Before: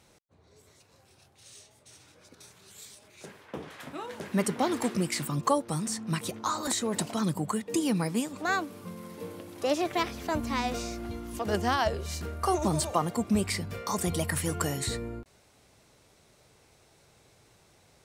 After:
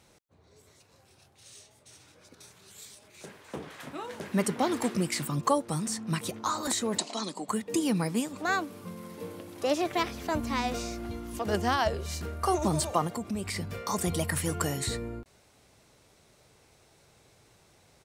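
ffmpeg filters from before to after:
ffmpeg -i in.wav -filter_complex "[0:a]asplit=2[link_01][link_02];[link_02]afade=type=in:start_time=2.84:duration=0.01,afade=type=out:start_time=3.42:duration=0.01,aecho=0:1:300|600|900|1200|1500|1800|2100|2400|2700|3000|3300|3600:0.398107|0.29858|0.223935|0.167951|0.125964|0.0944727|0.0708545|0.0531409|0.0398557|0.0298918|0.0224188|0.0168141[link_03];[link_01][link_03]amix=inputs=2:normalize=0,asettb=1/sr,asplit=3[link_04][link_05][link_06];[link_04]atrim=end=6.984[link_07];[link_05]atrim=start=6.98:end=7.49,asetpts=PTS-STARTPTS,afade=type=in:duration=0.004:curve=qsin,afade=type=out:start_time=0.506:duration=0.004:curve=qsin,highpass=frequency=270:width=0.5412,highpass=frequency=270:width=1.3066,equalizer=frequency=330:width_type=q:width=4:gain=-4,equalizer=frequency=490:width_type=q:width=4:gain=-4,equalizer=frequency=1500:width_type=q:width=4:gain=-8,equalizer=frequency=4200:width_type=q:width=4:gain=8,equalizer=frequency=6800:width_type=q:width=4:gain=5,lowpass=frequency=8700:width=0.5412,lowpass=frequency=8700:width=1.3066[link_08];[link_06]atrim=start=7.486[link_09];[link_07][link_08]acrossfade=duration=0.004:curve1=hsin:curve2=qsin[link_10];[link_10][link_09]acrossfade=duration=0.004:curve1=qsin:curve2=hsin,asettb=1/sr,asplit=3[link_11][link_12][link_13];[link_11]atrim=end=13.074[link_14];[link_12]atrim=start=13.07:end=13.56,asetpts=PTS-STARTPTS,afade=type=in:duration=0.004:curve=qsin,afade=type=out:start_time=0.486:duration=0.004:curve=qsin,acompressor=threshold=-31dB:ratio=3:attack=3.2:release=140:knee=1:detection=peak[link_15];[link_13]atrim=start=13.556[link_16];[link_14][link_15]acrossfade=duration=0.004:curve1=hsin:curve2=qsin[link_17];[link_17][link_16]acrossfade=duration=0.004:curve1=qsin:curve2=hsin" out.wav

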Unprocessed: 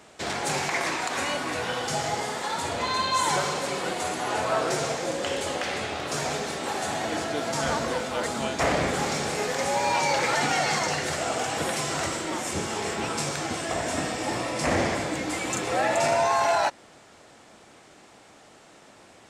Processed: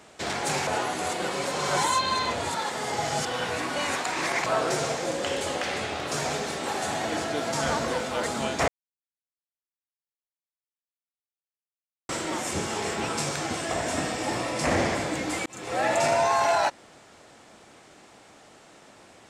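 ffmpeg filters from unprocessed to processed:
ffmpeg -i in.wav -filter_complex "[0:a]asplit=6[link_01][link_02][link_03][link_04][link_05][link_06];[link_01]atrim=end=0.672[link_07];[link_02]atrim=start=0.668:end=4.462,asetpts=PTS-STARTPTS,areverse[link_08];[link_03]atrim=start=4.458:end=8.68,asetpts=PTS-STARTPTS,afade=type=out:start_time=4.218:duration=0.004:curve=hsin[link_09];[link_04]atrim=start=8.68:end=12.09,asetpts=PTS-STARTPTS,volume=0[link_10];[link_05]atrim=start=12.09:end=15.46,asetpts=PTS-STARTPTS,afade=type=in:duration=0.004:curve=hsin,afade=type=out:start_time=3.366:duration=0.004:curve=hsin[link_11];[link_06]atrim=start=15.46,asetpts=PTS-STARTPTS,afade=type=in:duration=0.41[link_12];[link_07][link_08]acrossfade=duration=0.004:curve1=hsin:curve2=hsin[link_13];[link_09][link_10][link_11][link_12]concat=n=4:v=0:a=1[link_14];[link_13][link_14]acrossfade=duration=0.004:curve1=hsin:curve2=hsin" out.wav

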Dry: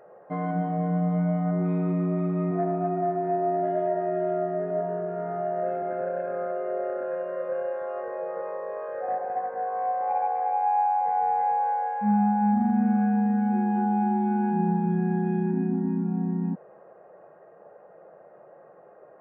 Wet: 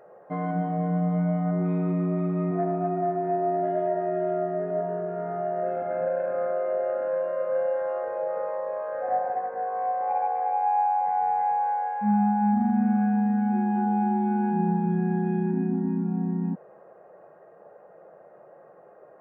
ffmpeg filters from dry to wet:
ffmpeg -i in.wav -filter_complex "[0:a]asettb=1/sr,asplit=3[link_01][link_02][link_03];[link_01]atrim=end=5.724[link_04];[link_02]atrim=start=5.72:end=9.34,asetpts=PTS-STARTPTS,afade=type=in:duration=0.004:curve=qsin,afade=type=out:start_time=3.616:duration=0.004:curve=qsin,asplit=2[link_05][link_06];[link_06]adelay=42,volume=-3dB[link_07];[link_05][link_07]amix=inputs=2:normalize=0,atrim=end_sample=159642[link_08];[link_03]atrim=start=9.336[link_09];[link_04][link_08]acrossfade=duration=0.004:curve1=hsin:curve2=qsin[link_10];[link_10][link_09]acrossfade=duration=0.004:curve1=qsin:curve2=hsin,asettb=1/sr,asplit=3[link_11][link_12][link_13];[link_11]atrim=end=11.054[link_14];[link_12]atrim=start=11.05:end=13.87,asetpts=PTS-STARTPTS,afade=type=in:duration=0.004:curve=qsin,afade=type=out:start_time=2.816:duration=0.004:curve=qsin,equalizer=frequency=490:width=7.4:gain=-9.5[link_15];[link_13]atrim=start=13.866[link_16];[link_14][link_15]acrossfade=duration=0.004:curve1=hsin:curve2=qsin[link_17];[link_17][link_16]acrossfade=duration=0.004:curve1=qsin:curve2=hsin" out.wav

